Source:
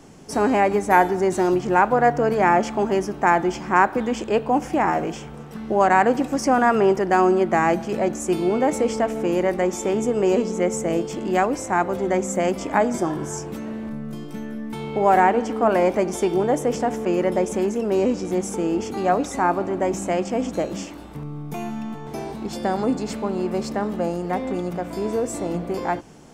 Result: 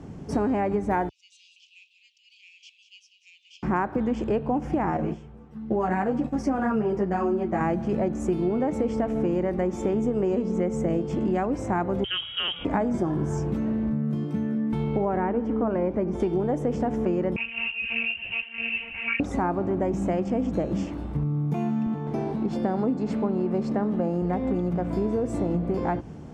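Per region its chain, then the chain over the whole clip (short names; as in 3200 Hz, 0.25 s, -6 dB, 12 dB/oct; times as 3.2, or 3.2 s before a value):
1.09–3.63 steep high-pass 2600 Hz 96 dB/oct + air absorption 140 m + echo 0.193 s -11 dB
4.97–7.61 gate -30 dBFS, range -11 dB + doubler 33 ms -13 dB + ensemble effect
12.04–12.65 low shelf 150 Hz -11.5 dB + inverted band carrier 3500 Hz
15.05–16.2 LPF 1600 Hz 6 dB/oct + bell 740 Hz -6 dB 0.3 oct
17.36–19.2 inverted band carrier 3000 Hz + monotone LPC vocoder at 8 kHz 230 Hz + ensemble effect
21.86–24.22 HPF 140 Hz + high shelf 5500 Hz -4.5 dB
whole clip: HPF 62 Hz; RIAA curve playback; compressor 5:1, threshold -21 dBFS; gain -1 dB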